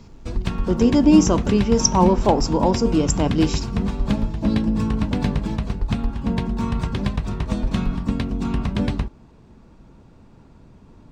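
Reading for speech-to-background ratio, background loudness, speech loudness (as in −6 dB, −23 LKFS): 5.5 dB, −24.5 LKFS, −19.0 LKFS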